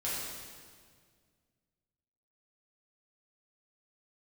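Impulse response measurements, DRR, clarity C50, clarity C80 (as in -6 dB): -9.0 dB, -2.0 dB, 0.5 dB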